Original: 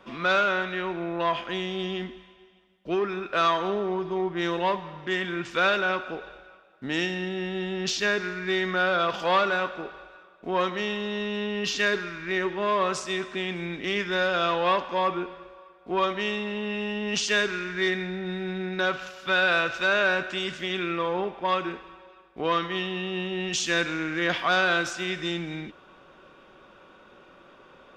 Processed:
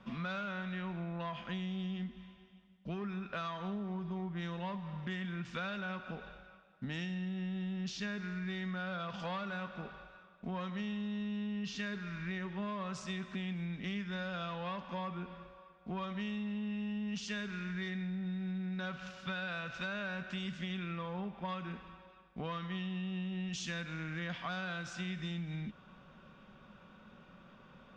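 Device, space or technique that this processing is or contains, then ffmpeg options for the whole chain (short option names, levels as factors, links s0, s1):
jukebox: -af "lowpass=7400,lowshelf=f=260:t=q:w=3:g=7.5,acompressor=threshold=0.0316:ratio=6,volume=0.447"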